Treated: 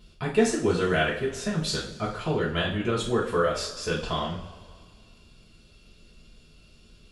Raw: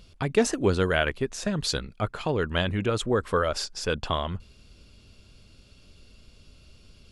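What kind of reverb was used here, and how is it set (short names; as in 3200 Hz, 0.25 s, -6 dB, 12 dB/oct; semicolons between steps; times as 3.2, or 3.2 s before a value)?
two-slope reverb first 0.4 s, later 2 s, from -18 dB, DRR -6 dB; gain -7 dB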